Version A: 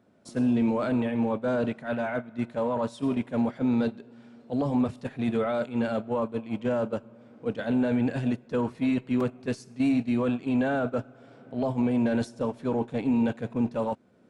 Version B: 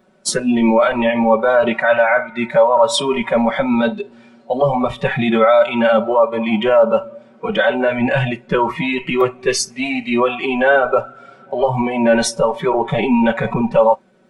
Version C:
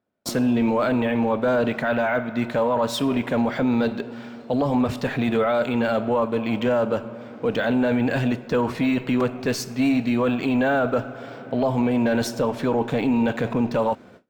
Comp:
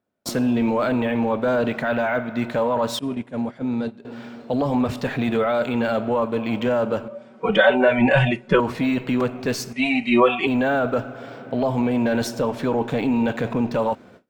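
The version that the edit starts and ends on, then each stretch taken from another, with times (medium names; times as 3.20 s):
C
2.99–4.05 s: from A
7.08–8.60 s: from B
9.73–10.47 s: from B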